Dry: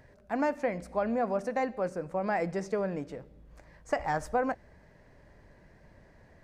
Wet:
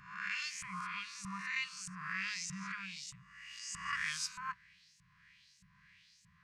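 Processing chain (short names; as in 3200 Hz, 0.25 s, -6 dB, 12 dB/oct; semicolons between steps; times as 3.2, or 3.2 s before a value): spectral swells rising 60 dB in 1.48 s; band shelf 1200 Hz -13.5 dB; LFO band-pass saw up 1.6 Hz 610–8000 Hz; FFT band-reject 200–990 Hz; gain +13.5 dB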